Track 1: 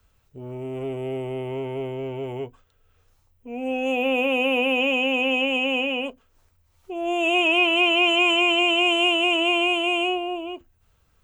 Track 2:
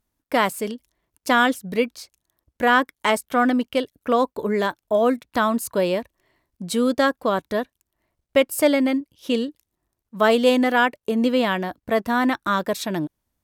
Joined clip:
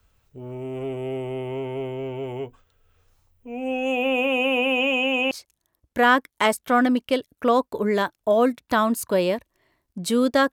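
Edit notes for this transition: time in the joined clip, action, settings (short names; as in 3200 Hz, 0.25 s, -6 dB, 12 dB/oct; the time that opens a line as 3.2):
track 1
5.31 switch to track 2 from 1.95 s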